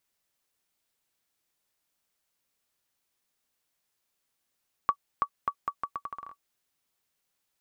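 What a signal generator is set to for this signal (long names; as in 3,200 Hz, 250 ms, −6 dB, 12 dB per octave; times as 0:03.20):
bouncing ball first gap 0.33 s, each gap 0.78, 1,140 Hz, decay 70 ms −12.5 dBFS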